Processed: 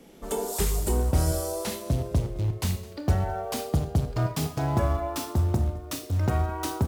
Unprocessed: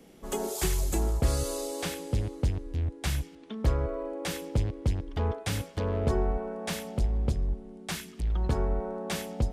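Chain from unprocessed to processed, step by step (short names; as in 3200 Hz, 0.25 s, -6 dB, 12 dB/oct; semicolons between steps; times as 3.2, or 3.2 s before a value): speed glide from 102% -> 175%; dynamic EQ 2200 Hz, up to -5 dB, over -49 dBFS, Q 0.78; in parallel at -9 dB: short-mantissa float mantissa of 2-bit; on the sum: echo 0.211 s -20.5 dB; Schroeder reverb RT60 0.43 s, combs from 25 ms, DRR 7.5 dB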